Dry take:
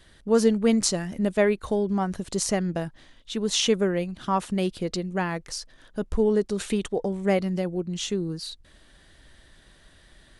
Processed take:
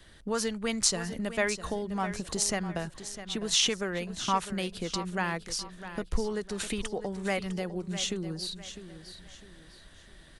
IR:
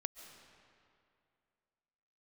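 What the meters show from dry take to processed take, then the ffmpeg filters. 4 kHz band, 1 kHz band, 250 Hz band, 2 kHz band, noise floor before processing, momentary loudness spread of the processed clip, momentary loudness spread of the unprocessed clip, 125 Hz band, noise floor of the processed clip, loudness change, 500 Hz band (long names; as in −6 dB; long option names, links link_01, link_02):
+0.5 dB, −2.5 dB, −8.5 dB, 0.0 dB, −56 dBFS, 13 LU, 12 LU, −6.5 dB, −54 dBFS, −5.5 dB, −9.0 dB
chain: -filter_complex "[0:a]acrossover=split=100|830|1700[link_01][link_02][link_03][link_04];[link_02]acompressor=threshold=-33dB:ratio=6[link_05];[link_01][link_05][link_03][link_04]amix=inputs=4:normalize=0,aecho=1:1:654|1308|1962:0.251|0.0854|0.029"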